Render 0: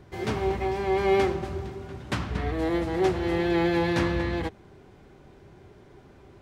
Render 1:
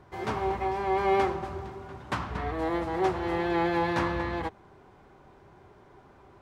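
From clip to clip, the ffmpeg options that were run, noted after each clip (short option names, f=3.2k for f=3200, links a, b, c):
-af "equalizer=f=1k:t=o:w=1.4:g=10.5,volume=-6dB"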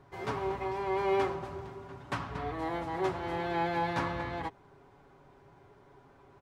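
-af "aecho=1:1:7.2:0.45,volume=-4.5dB"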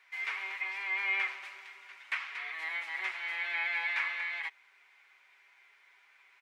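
-filter_complex "[0:a]highpass=f=2.2k:t=q:w=4.8,acrossover=split=2900[a][b];[b]acompressor=threshold=-49dB:ratio=4:attack=1:release=60[c];[a][c]amix=inputs=2:normalize=0,volume=2dB"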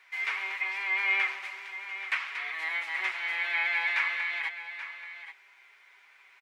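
-af "aecho=1:1:830:0.251,volume=4.5dB"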